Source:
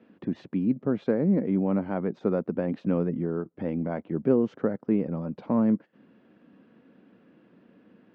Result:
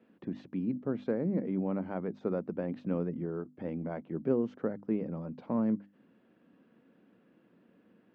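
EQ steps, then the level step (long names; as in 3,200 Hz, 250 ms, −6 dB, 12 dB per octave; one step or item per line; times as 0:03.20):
mains-hum notches 50/100/150/200/250/300 Hz
−6.5 dB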